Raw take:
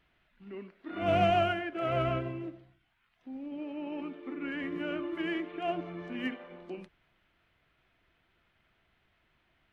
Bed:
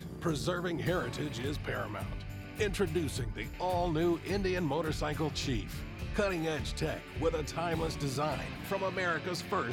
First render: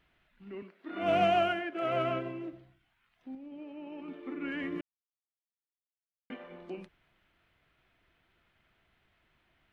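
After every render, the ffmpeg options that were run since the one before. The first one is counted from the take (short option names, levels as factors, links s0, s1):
-filter_complex "[0:a]asettb=1/sr,asplit=3[s0][s1][s2];[s0]atrim=end=0.624[s3];[s1]atrim=start=0.62:end=2.53,asetpts=PTS-STARTPTS,afade=t=in:d=0.004:c=qsin,afade=t=out:st=1.906:d=0.004:c=qsin,highpass=190[s4];[s2]atrim=start=2.526[s5];[s3][s4]acrossfade=d=0.004:c1=hsin:c2=qsin[s6];[s6][s5]acrossfade=d=0.004:c1=qsin:c2=hsin,asplit=5[s7][s8][s9][s10][s11];[s7]atrim=end=3.352[s12];[s8]atrim=start=3.348:end=4.082,asetpts=PTS-STARTPTS,volume=0.501[s13];[s9]atrim=start=4.078:end=4.81,asetpts=PTS-STARTPTS,afade=t=out:st=0.728:d=0.004:c=hsin[s14];[s10]atrim=start=4.81:end=6.3,asetpts=PTS-STARTPTS,volume=0[s15];[s11]atrim=start=6.3,asetpts=PTS-STARTPTS,afade=t=in:d=0.004:c=hsin[s16];[s12][s13]acrossfade=d=0.004:c1=hsin:c2=hsin[s17];[s14][s15][s16]concat=n=3:v=0:a=1[s18];[s17][s18]acrossfade=d=0.004:c1=hsin:c2=hsin"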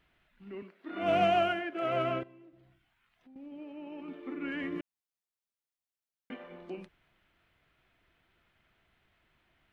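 -filter_complex "[0:a]asettb=1/sr,asplit=3[s0][s1][s2];[s0]atrim=end=2.234[s3];[s1]atrim=start=2.23:end=3.36,asetpts=PTS-STARTPTS,afade=t=in:d=0.004:c=qsin,afade=t=out:st=1.126:d=0.004:c=qsin,acompressor=threshold=0.00112:ratio=3:attack=3.2:release=140:knee=1:detection=peak[s4];[s2]atrim=start=3.356[s5];[s3][s4]acrossfade=d=0.004:c1=hsin:c2=qsin[s6];[s6][s5]acrossfade=d=0.004:c1=qsin:c2=hsin"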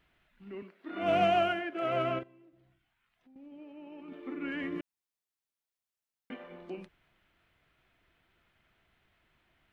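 -filter_complex "[0:a]asplit=3[s0][s1][s2];[s0]atrim=end=2.192[s3];[s1]atrim=start=2.188:end=4.122,asetpts=PTS-STARTPTS,volume=0.631[s4];[s2]atrim=start=4.118[s5];[s3][s4]acrossfade=d=0.004:c1=hsin:c2=hsin[s6];[s6][s5]acrossfade=d=0.004:c1=hsin:c2=hsin"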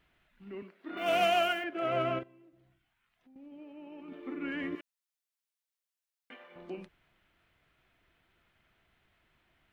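-filter_complex "[0:a]asettb=1/sr,asplit=3[s0][s1][s2];[s0]atrim=end=0.974[s3];[s1]atrim=start=0.97:end=1.64,asetpts=PTS-STARTPTS,afade=t=in:d=0.004:c=qsin,afade=t=out:st=0.666:d=0.004:c=qsin,aemphasis=mode=production:type=riaa[s4];[s2]atrim=start=1.636[s5];[s3][s4]acrossfade=d=0.004:c1=hsin:c2=qsin[s6];[s6][s5]acrossfade=d=0.004:c1=qsin:c2=hsin,asettb=1/sr,asplit=3[s7][s8][s9];[s7]atrim=end=4.754[s10];[s8]atrim=start=4.75:end=6.56,asetpts=PTS-STARTPTS,afade=t=in:d=0.004:c=qsin,afade=t=out:st=1.806:d=0.004:c=qsin,highpass=f=1200:p=1[s11];[s9]atrim=start=6.556[s12];[s10][s11]acrossfade=d=0.004:c1=hsin:c2=qsin[s13];[s13][s12]acrossfade=d=0.004:c1=qsin:c2=hsin"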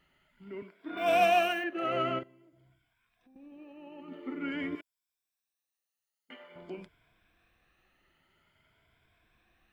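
-af "afftfilt=real='re*pow(10,10/40*sin(2*PI*(1.7*log(max(b,1)*sr/1024/100)/log(2)-(0.49)*(pts-256)/sr)))':imag='im*pow(10,10/40*sin(2*PI*(1.7*log(max(b,1)*sr/1024/100)/log(2)-(0.49)*(pts-256)/sr)))':win_size=1024:overlap=0.75"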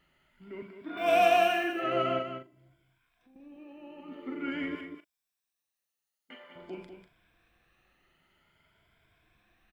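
-filter_complex "[0:a]asplit=2[s0][s1];[s1]adelay=38,volume=0.299[s2];[s0][s2]amix=inputs=2:normalize=0,aecho=1:1:43.73|195.3:0.282|0.398"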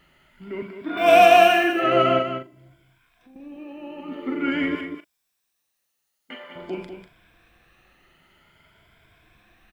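-af "volume=3.35,alimiter=limit=0.708:level=0:latency=1"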